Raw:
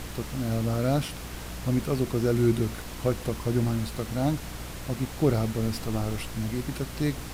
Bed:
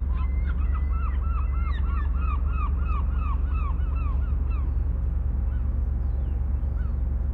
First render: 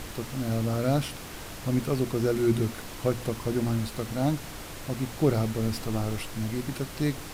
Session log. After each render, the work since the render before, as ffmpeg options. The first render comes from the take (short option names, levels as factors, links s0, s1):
-af "bandreject=f=60:t=h:w=4,bandreject=f=120:t=h:w=4,bandreject=f=180:t=h:w=4,bandreject=f=240:t=h:w=4"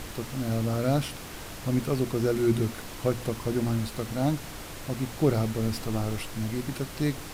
-af anull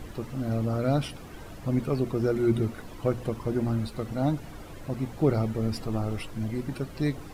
-af "afftdn=nr=12:nf=-41"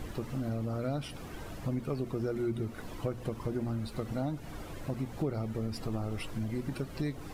-af "acompressor=threshold=0.0282:ratio=4"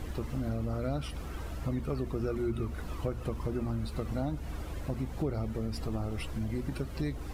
-filter_complex "[1:a]volume=0.168[s0];[0:a][s0]amix=inputs=2:normalize=0"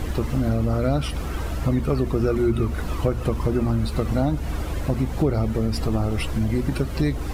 -af "volume=3.76"